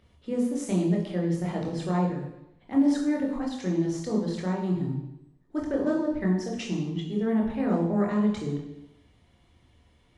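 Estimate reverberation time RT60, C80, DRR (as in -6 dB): 0.85 s, 8.0 dB, -1.0 dB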